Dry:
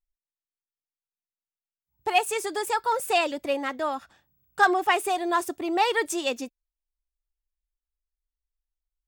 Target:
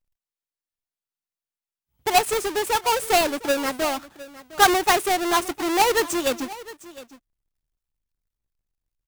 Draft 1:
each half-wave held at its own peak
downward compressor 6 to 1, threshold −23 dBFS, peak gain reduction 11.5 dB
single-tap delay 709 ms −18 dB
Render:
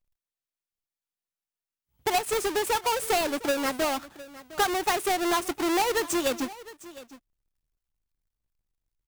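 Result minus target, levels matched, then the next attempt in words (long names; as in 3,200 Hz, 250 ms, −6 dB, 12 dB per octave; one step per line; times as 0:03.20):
downward compressor: peak gain reduction +11.5 dB
each half-wave held at its own peak
single-tap delay 709 ms −18 dB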